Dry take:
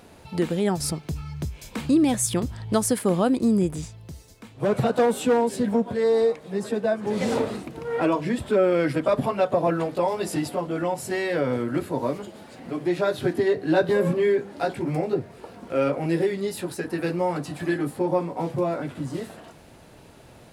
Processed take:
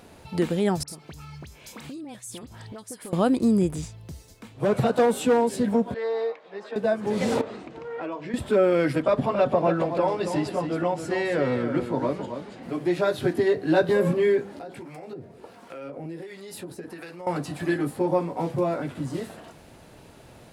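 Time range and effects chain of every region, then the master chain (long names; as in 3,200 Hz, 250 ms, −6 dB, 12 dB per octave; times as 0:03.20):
0:00.83–0:03.13: high-pass filter 250 Hz 6 dB per octave + downward compressor, threshold −37 dBFS + all-pass dispersion highs, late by 53 ms, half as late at 2,000 Hz
0:05.94–0:06.76: high-pass filter 620 Hz + high-frequency loss of the air 220 metres
0:07.41–0:08.34: low-pass filter 7,500 Hz 24 dB per octave + bass and treble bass −8 dB, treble −7 dB + downward compressor 2 to 1, threshold −36 dBFS
0:09.02–0:12.63: high-frequency loss of the air 68 metres + single-tap delay 274 ms −8 dB
0:14.59–0:17.27: high-pass filter 120 Hz 6 dB per octave + downward compressor 10 to 1, threshold −30 dBFS + two-band tremolo in antiphase 1.4 Hz, crossover 660 Hz
whole clip: no processing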